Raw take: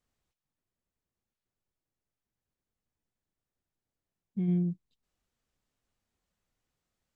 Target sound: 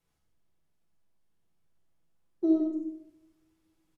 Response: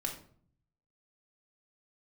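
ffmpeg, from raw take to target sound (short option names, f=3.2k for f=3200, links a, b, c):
-filter_complex "[0:a]acrossover=split=270[a][b];[b]acompressor=threshold=-51dB:ratio=2[c];[a][c]amix=inputs=2:normalize=0,asetrate=79380,aresample=44100,aecho=1:1:92:0.473[d];[1:a]atrim=start_sample=2205,asetrate=25578,aresample=44100[e];[d][e]afir=irnorm=-1:irlink=0"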